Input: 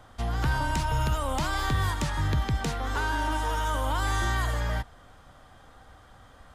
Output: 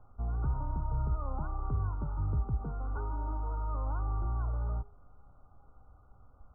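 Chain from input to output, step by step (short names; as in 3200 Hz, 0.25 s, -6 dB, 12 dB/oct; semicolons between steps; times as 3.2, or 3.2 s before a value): brick-wall FIR low-pass 1500 Hz; low shelf 140 Hz +12 dB; resonator 410 Hz, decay 0.57 s, mix 80%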